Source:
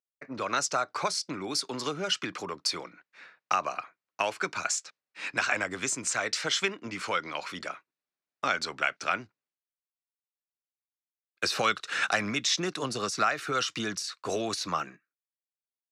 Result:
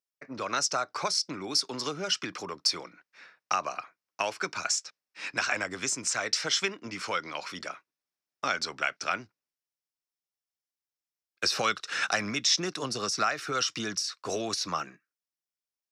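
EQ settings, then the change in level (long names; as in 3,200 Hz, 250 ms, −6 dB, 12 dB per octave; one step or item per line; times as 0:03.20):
parametric band 5,400 Hz +8.5 dB 0.31 octaves
−1.5 dB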